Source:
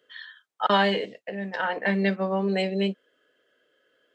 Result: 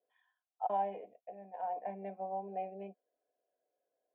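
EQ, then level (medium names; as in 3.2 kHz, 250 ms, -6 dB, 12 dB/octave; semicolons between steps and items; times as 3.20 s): cascade formant filter a; bass shelf 120 Hz -9 dB; static phaser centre 2.8 kHz, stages 4; +6.0 dB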